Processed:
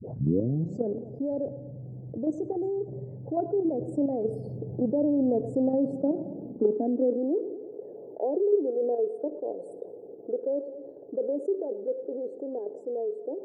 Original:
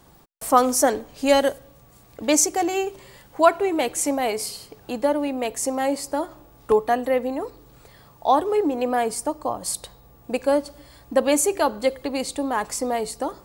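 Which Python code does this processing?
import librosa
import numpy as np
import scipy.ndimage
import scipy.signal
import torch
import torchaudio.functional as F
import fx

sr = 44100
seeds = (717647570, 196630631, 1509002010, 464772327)

p1 = fx.tape_start_head(x, sr, length_s=1.0)
p2 = fx.doppler_pass(p1, sr, speed_mps=8, closest_m=7.3, pass_at_s=5.25)
p3 = scipy.signal.sosfilt(scipy.signal.cheby2(4, 40, 1100.0, 'lowpass', fs=sr, output='sos'), p2)
p4 = fx.low_shelf(p3, sr, hz=66.0, db=-8.5)
p5 = fx.level_steps(p4, sr, step_db=10)
p6 = fx.filter_sweep_highpass(p5, sr, from_hz=120.0, to_hz=410.0, start_s=5.49, end_s=7.64, q=4.0)
p7 = fx.spec_topn(p6, sr, count=64)
p8 = p7 + fx.echo_feedback(p7, sr, ms=111, feedback_pct=51, wet_db=-23.0, dry=0)
y = fx.env_flatten(p8, sr, amount_pct=50)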